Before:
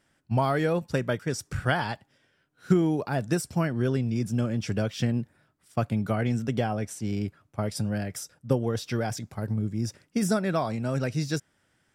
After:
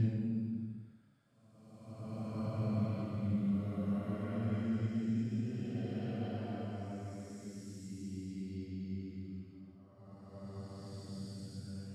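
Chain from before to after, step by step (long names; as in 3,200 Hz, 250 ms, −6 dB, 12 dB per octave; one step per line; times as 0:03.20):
source passing by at 0:03.97, 25 m/s, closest 3.1 metres
extreme stretch with random phases 4.1×, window 0.50 s, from 0:04.94
graphic EQ with 10 bands 125 Hz +6 dB, 250 Hz +10 dB, 4,000 Hz +6 dB
on a send: backwards echo 468 ms −14 dB
on the sum: level +6.5 dB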